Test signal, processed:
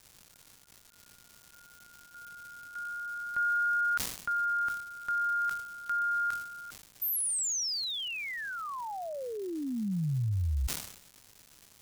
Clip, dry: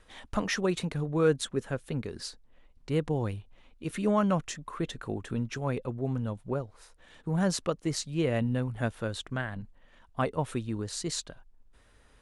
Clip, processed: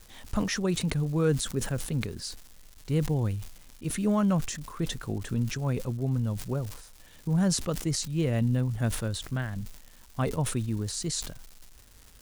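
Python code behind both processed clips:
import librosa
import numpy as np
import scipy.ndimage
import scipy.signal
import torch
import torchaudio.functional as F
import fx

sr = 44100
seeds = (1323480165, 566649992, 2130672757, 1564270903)

y = fx.dmg_crackle(x, sr, seeds[0], per_s=450.0, level_db=-43.0)
y = fx.bass_treble(y, sr, bass_db=9, treble_db=7)
y = fx.sustainer(y, sr, db_per_s=79.0)
y = F.gain(torch.from_numpy(y), -3.5).numpy()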